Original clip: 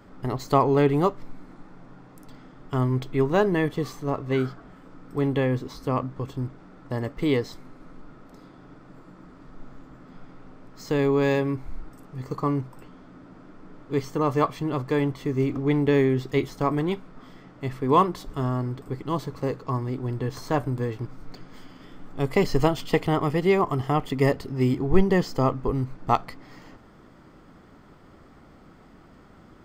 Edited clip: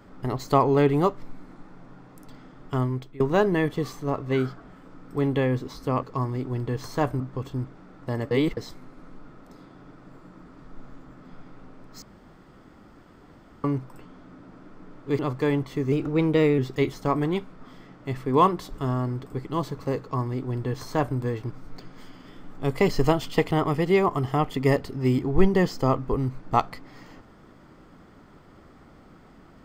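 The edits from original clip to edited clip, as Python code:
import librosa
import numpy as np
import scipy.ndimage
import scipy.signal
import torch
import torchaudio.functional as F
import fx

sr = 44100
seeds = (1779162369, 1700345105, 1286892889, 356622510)

y = fx.edit(x, sr, fx.fade_out_to(start_s=2.74, length_s=0.46, floor_db=-21.5),
    fx.reverse_span(start_s=7.14, length_s=0.26),
    fx.room_tone_fill(start_s=10.85, length_s=1.62),
    fx.cut(start_s=14.02, length_s=0.66),
    fx.speed_span(start_s=15.41, length_s=0.73, speed=1.1),
    fx.duplicate(start_s=19.56, length_s=1.17, to_s=6.03), tone=tone)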